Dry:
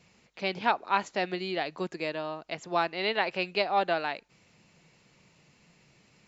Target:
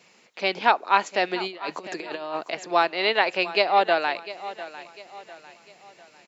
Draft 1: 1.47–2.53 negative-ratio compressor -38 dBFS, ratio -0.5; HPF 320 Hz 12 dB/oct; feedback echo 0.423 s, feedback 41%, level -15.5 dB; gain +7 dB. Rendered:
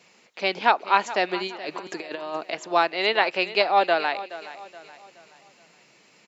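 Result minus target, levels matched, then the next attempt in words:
echo 0.277 s early
1.47–2.53 negative-ratio compressor -38 dBFS, ratio -0.5; HPF 320 Hz 12 dB/oct; feedback echo 0.7 s, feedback 41%, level -15.5 dB; gain +7 dB

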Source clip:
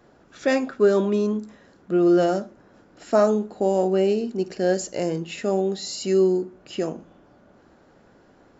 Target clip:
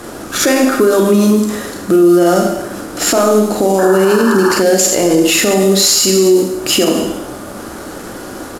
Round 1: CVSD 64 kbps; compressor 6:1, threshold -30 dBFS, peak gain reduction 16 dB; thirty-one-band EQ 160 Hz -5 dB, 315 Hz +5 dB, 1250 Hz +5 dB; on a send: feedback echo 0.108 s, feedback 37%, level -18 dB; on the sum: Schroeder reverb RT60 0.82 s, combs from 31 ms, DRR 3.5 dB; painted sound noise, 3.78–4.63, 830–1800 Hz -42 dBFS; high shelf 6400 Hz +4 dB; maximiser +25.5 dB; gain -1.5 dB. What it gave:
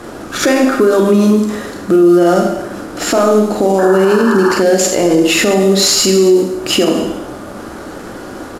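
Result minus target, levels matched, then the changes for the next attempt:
8000 Hz band -3.5 dB
change: high shelf 6400 Hz +15 dB

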